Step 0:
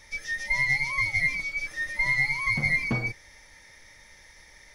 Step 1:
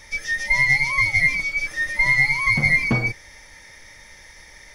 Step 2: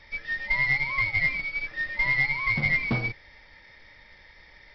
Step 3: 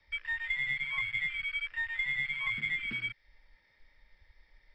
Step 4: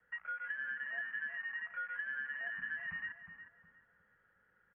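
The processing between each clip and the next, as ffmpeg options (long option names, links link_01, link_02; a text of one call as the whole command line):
ffmpeg -i in.wav -af "bandreject=frequency=4000:width=20,volume=7dB" out.wav
ffmpeg -i in.wav -filter_complex "[0:a]acrossover=split=3700[link_01][link_02];[link_02]acompressor=threshold=-46dB:ratio=4:attack=1:release=60[link_03];[link_01][link_03]amix=inputs=2:normalize=0,aresample=11025,acrusher=bits=4:mode=log:mix=0:aa=0.000001,aresample=44100,volume=-6dB" out.wav
ffmpeg -i in.wav -filter_complex "[0:a]acrossover=split=250|1400[link_01][link_02][link_03];[link_01]acompressor=threshold=-41dB:ratio=4[link_04];[link_02]acompressor=threshold=-52dB:ratio=4[link_05];[link_03]acompressor=threshold=-32dB:ratio=4[link_06];[link_04][link_05][link_06]amix=inputs=3:normalize=0,afwtdn=0.0126,acrossover=split=250|450|1900[link_07][link_08][link_09][link_10];[link_07]acompressor=threshold=-50dB:ratio=6[link_11];[link_11][link_08][link_09][link_10]amix=inputs=4:normalize=0" out.wav
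ffmpeg -i in.wav -filter_complex "[0:a]acrossover=split=280|1400[link_01][link_02][link_03];[link_01]acompressor=threshold=-52dB:ratio=4[link_04];[link_02]acompressor=threshold=-56dB:ratio=4[link_05];[link_03]acompressor=threshold=-35dB:ratio=4[link_06];[link_04][link_05][link_06]amix=inputs=3:normalize=0,highpass=frequency=200:width_type=q:width=0.5412,highpass=frequency=200:width_type=q:width=1.307,lowpass=frequency=2600:width_type=q:width=0.5176,lowpass=frequency=2600:width_type=q:width=0.7071,lowpass=frequency=2600:width_type=q:width=1.932,afreqshift=-400,asplit=2[link_07][link_08];[link_08]adelay=361,lowpass=frequency=1300:poles=1,volume=-7dB,asplit=2[link_09][link_10];[link_10]adelay=361,lowpass=frequency=1300:poles=1,volume=0.41,asplit=2[link_11][link_12];[link_12]adelay=361,lowpass=frequency=1300:poles=1,volume=0.41,asplit=2[link_13][link_14];[link_14]adelay=361,lowpass=frequency=1300:poles=1,volume=0.41,asplit=2[link_15][link_16];[link_16]adelay=361,lowpass=frequency=1300:poles=1,volume=0.41[link_17];[link_07][link_09][link_11][link_13][link_15][link_17]amix=inputs=6:normalize=0,volume=-3dB" out.wav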